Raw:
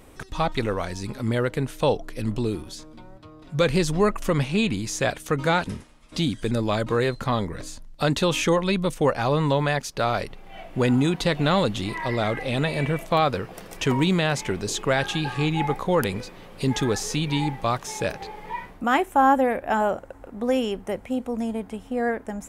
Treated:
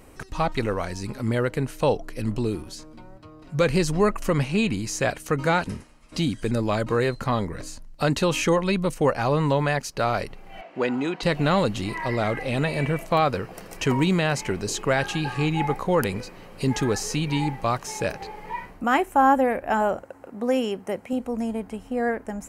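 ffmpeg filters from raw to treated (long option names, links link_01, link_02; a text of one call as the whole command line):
ffmpeg -i in.wav -filter_complex "[0:a]asettb=1/sr,asplit=3[link_01][link_02][link_03];[link_01]atrim=end=10.614[link_04];[link_02]atrim=start=10.61:end=11.23,asetpts=PTS-STARTPTS,afade=type=in:duration=0.004:curve=qsin,afade=type=out:start_time=0.616:duration=0.004:curve=qsin,highpass=330,lowpass=4300[link_05];[link_03]atrim=start=11.226[link_06];[link_04][link_05]acrossfade=duration=0.004:curve1=hsin:curve2=qsin[link_07];[link_07][link_06]acrossfade=duration=0.004:curve1=qsin:curve2=hsin,asettb=1/sr,asplit=3[link_08][link_09][link_10];[link_08]atrim=end=20.034[link_11];[link_09]atrim=start=20.03:end=21.13,asetpts=PTS-STARTPTS,afade=type=in:duration=0.004:curve=qsin,afade=type=out:start_time=1.096:duration=0.004:curve=qsin,highpass=130[link_12];[link_10]atrim=start=21.126[link_13];[link_11][link_12]acrossfade=duration=0.004:curve1=hsin:curve2=qsin[link_14];[link_14][link_13]acrossfade=duration=0.004:curve1=qsin:curve2=hsin,bandreject=frequency=3500:width=6.7" out.wav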